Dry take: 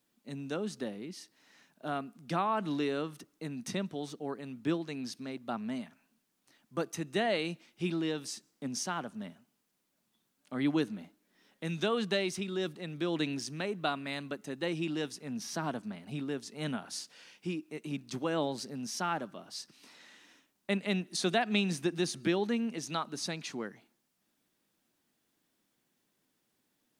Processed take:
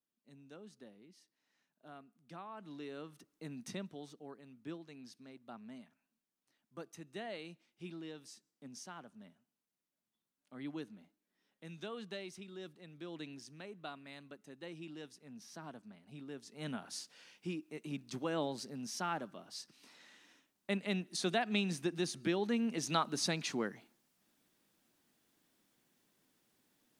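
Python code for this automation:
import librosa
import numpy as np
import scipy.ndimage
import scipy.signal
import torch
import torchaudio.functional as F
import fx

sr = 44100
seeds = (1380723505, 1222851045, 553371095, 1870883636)

y = fx.gain(x, sr, db=fx.line((2.53, -18.0), (3.52, -6.0), (4.44, -14.0), (16.08, -14.0), (16.82, -4.5), (22.36, -4.5), (22.89, 2.0)))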